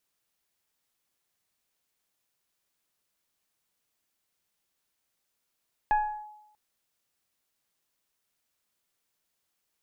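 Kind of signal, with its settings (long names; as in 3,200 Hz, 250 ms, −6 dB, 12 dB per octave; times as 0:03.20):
two-operator FM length 0.64 s, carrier 846 Hz, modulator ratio 0.98, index 0.54, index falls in 0.36 s linear, decay 0.87 s, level −18.5 dB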